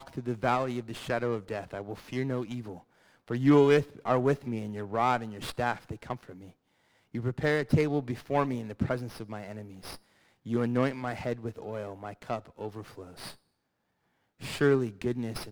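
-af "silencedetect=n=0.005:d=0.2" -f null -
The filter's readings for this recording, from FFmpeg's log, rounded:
silence_start: 2.80
silence_end: 3.28 | silence_duration: 0.48
silence_start: 6.50
silence_end: 7.14 | silence_duration: 0.64
silence_start: 9.97
silence_end: 10.46 | silence_duration: 0.49
silence_start: 13.35
silence_end: 14.41 | silence_duration: 1.06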